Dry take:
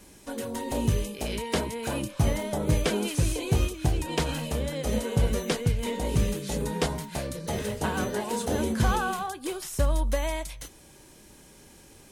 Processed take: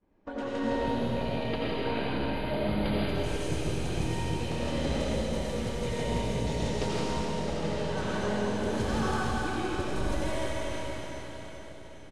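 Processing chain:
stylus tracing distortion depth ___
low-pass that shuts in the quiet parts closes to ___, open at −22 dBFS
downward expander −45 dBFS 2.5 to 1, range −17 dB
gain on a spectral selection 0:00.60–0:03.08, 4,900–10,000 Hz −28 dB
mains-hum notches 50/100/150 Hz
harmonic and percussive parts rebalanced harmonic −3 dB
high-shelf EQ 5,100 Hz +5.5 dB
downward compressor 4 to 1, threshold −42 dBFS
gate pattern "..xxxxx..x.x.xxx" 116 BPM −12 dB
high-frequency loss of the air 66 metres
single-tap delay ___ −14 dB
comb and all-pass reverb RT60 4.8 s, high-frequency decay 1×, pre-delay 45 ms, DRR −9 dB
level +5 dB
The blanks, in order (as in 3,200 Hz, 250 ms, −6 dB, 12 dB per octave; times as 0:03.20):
0.03 ms, 1,200 Hz, 141 ms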